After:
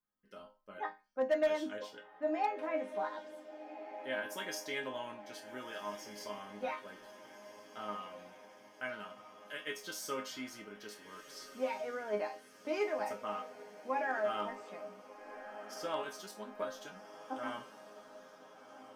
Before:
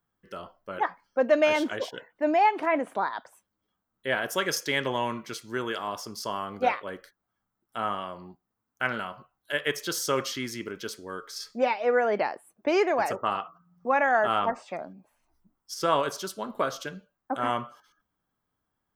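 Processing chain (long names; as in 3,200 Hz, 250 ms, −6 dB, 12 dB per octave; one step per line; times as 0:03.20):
resonators tuned to a chord G#3 major, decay 0.25 s
feedback delay with all-pass diffusion 1,476 ms, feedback 55%, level −13 dB
asymmetric clip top −28.5 dBFS, bottom −28 dBFS
level +4 dB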